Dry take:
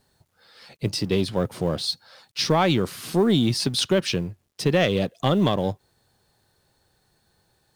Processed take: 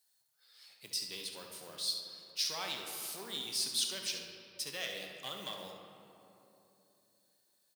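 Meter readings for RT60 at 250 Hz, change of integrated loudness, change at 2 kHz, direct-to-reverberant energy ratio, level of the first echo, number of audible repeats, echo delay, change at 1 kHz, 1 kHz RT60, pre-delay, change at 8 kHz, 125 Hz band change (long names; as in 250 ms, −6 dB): 3.7 s, −14.0 dB, −13.5 dB, 1.5 dB, −8.5 dB, 1, 69 ms, −20.0 dB, 2.8 s, 4 ms, −4.0 dB, −34.5 dB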